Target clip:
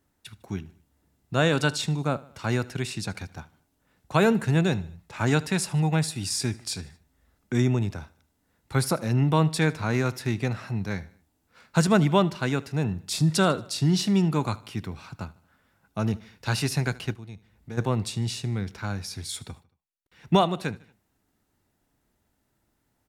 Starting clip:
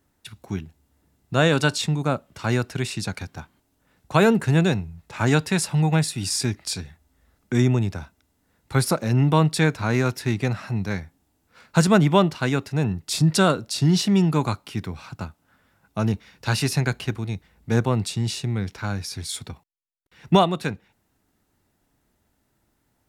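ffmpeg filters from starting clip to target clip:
-filter_complex "[0:a]aecho=1:1:76|152|228:0.0891|0.0428|0.0205,asplit=3[s0][s1][s2];[s0]afade=t=out:st=17.14:d=0.02[s3];[s1]acompressor=threshold=0.00891:ratio=2,afade=t=in:st=17.14:d=0.02,afade=t=out:st=17.77:d=0.02[s4];[s2]afade=t=in:st=17.77:d=0.02[s5];[s3][s4][s5]amix=inputs=3:normalize=0,volume=0.668"

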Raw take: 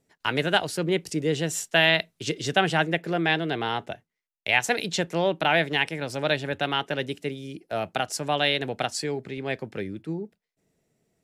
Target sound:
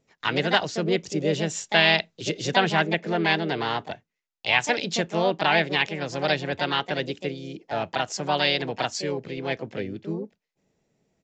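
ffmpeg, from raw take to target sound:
-filter_complex "[0:a]asplit=2[s0][s1];[s1]asetrate=55563,aresample=44100,atempo=0.793701,volume=0.501[s2];[s0][s2]amix=inputs=2:normalize=0,aresample=16000,aresample=44100"

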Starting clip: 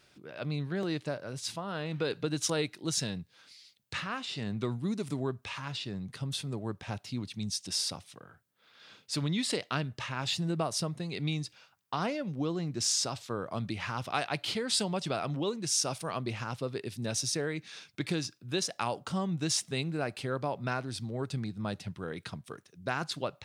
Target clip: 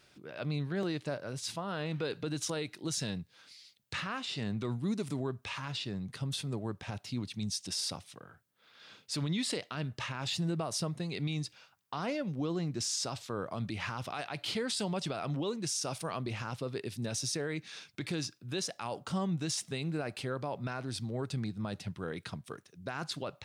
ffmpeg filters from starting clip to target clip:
-af "alimiter=level_in=1.19:limit=0.0631:level=0:latency=1:release=31,volume=0.841"

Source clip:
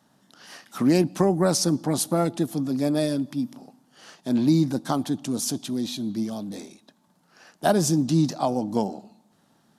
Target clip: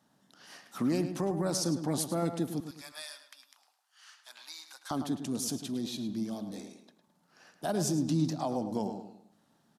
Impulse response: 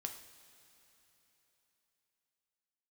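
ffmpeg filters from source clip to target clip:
-filter_complex "[0:a]asettb=1/sr,asplit=3[s0][s1][s2];[s0]atrim=end=2.604[s3];[s1]atrim=start=2.6:end=4.91,asetpts=PTS-STARTPTS,afade=t=in:d=0.004:c=qsin,afade=t=out:st=2.306:d=0.004:c=qsin,highpass=f=1100:w=0.5412,highpass=f=1100:w=1.3066[s4];[s2]atrim=start=4.906[s5];[s3][s4]acrossfade=d=0.004:c1=hsin:c2=qsin[s6];[s6][s5]acrossfade=d=0.004:c1=qsin:c2=hsin,alimiter=limit=0.188:level=0:latency=1:release=61,asplit=2[s7][s8];[s8]adelay=106,lowpass=f=4300:p=1,volume=0.355,asplit=2[s9][s10];[s10]adelay=106,lowpass=f=4300:p=1,volume=0.37,asplit=2[s11][s12];[s12]adelay=106,lowpass=f=4300:p=1,volume=0.37,asplit=2[s13][s14];[s14]adelay=106,lowpass=f=4300:p=1,volume=0.37[s15];[s7][s9][s11][s13][s15]amix=inputs=5:normalize=0,volume=0.447"

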